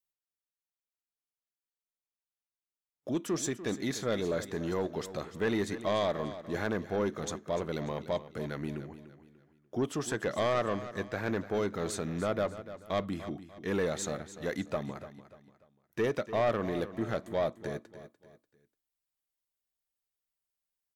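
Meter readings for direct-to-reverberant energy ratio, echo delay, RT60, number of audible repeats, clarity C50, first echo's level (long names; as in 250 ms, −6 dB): no reverb audible, 294 ms, no reverb audible, 3, no reverb audible, −13.5 dB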